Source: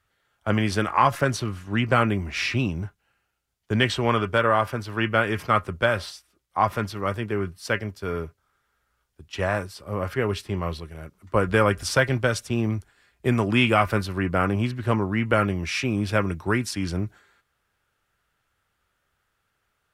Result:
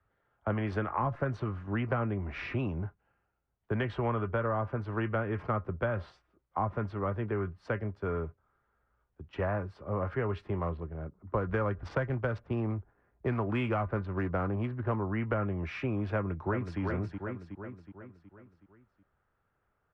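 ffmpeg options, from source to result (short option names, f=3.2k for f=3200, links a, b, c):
-filter_complex "[0:a]asettb=1/sr,asplit=3[a][b][c];[a]atrim=end=10.594[d];[b]atrim=start=10.59:end=14.98,asetpts=PTS-STARTPTS,afade=t=in:d=0.004:c=qsin,afade=t=out:st=4.386:d=0.004:c=qsin,adynamicsmooth=sensitivity=6:basefreq=1.4k[e];[c]atrim=start=14.976[f];[d][e]acrossfade=d=0.004:c1=hsin:c2=qsin[g];[g][f]acrossfade=d=0.004:c1=qsin:c2=hsin,asplit=2[h][i];[i]afade=t=in:st=16.15:d=0.01,afade=t=out:st=16.8:d=0.01,aecho=0:1:370|740|1110|1480|1850|2220:0.421697|0.210848|0.105424|0.0527121|0.026356|0.013178[j];[h][j]amix=inputs=2:normalize=0,lowpass=1.2k,acrossover=split=130|370|780[k][l][m][n];[k]acompressor=threshold=-36dB:ratio=4[o];[l]acompressor=threshold=-39dB:ratio=4[p];[m]acompressor=threshold=-37dB:ratio=4[q];[n]acompressor=threshold=-36dB:ratio=4[r];[o][p][q][r]amix=inputs=4:normalize=0"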